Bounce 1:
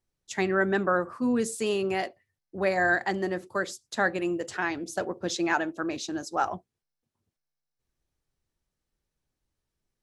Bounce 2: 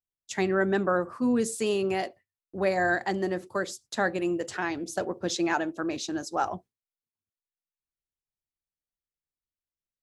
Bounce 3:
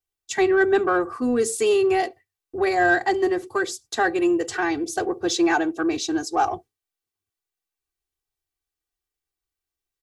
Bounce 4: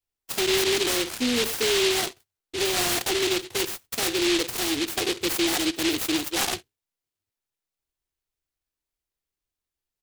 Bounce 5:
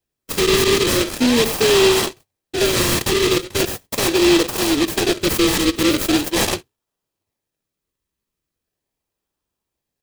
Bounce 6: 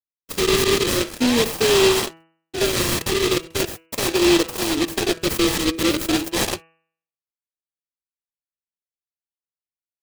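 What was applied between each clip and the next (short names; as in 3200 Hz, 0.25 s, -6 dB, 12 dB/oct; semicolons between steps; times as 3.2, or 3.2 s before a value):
gate with hold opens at -47 dBFS; dynamic EQ 1700 Hz, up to -4 dB, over -36 dBFS, Q 0.81; gain +1 dB
comb 2.6 ms, depth 99%; in parallel at -8 dB: soft clip -22.5 dBFS, distortion -12 dB; on the sum: gain +1 dB
limiter -17.5 dBFS, peak gain reduction 8.5 dB; noise-modulated delay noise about 3100 Hz, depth 0.3 ms
notch comb 720 Hz; in parallel at -3.5 dB: decimation with a swept rate 37×, swing 100% 0.4 Hz; on the sum: gain +6 dB
power-law curve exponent 1.4; de-hum 163.6 Hz, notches 18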